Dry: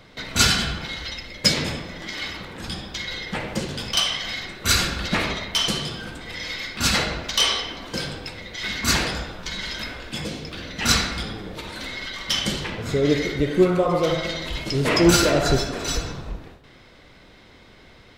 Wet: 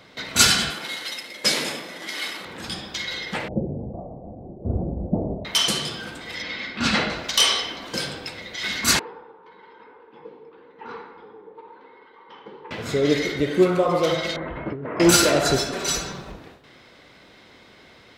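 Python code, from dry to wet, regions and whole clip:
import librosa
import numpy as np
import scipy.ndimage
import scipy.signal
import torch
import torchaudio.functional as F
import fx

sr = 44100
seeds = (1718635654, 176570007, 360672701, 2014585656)

y = fx.chain(x, sr, fx.cvsd(bps=64000),
    fx.highpass(hz=250.0, slope=12), at=(0.7, 2.45))
y = fx.chain(y, sr, fx.steep_lowpass(hz=740.0, slope=48),
    fx.low_shelf(hz=170.0, db=12.0), at=(3.48, 5.45))
y = fx.chain(y, sr, fx.lowpass(hz=3500.0, slope=12),
    fx.peak_eq(hz=230.0, db=7.5, octaves=0.57), at=(6.42, 7.1))
y = fx.chain(y, sr, fx.double_bandpass(hz=640.0, octaves=0.99),
    fx.air_absorb(metres=270.0), at=(8.99, 12.71))
y = fx.chain(y, sr, fx.lowpass(hz=1600.0, slope=24),
    fx.over_compress(threshold_db=-28.0, ratio=-1.0), at=(14.36, 15.0))
y = fx.chain(y, sr, fx.quant_float(bits=6),
    fx.comb(ms=5.2, depth=0.46), at=(15.72, 16.32))
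y = fx.dynamic_eq(y, sr, hz=10000.0, q=1.1, threshold_db=-41.0, ratio=4.0, max_db=6)
y = fx.highpass(y, sr, hz=200.0, slope=6)
y = F.gain(torch.from_numpy(y), 1.0).numpy()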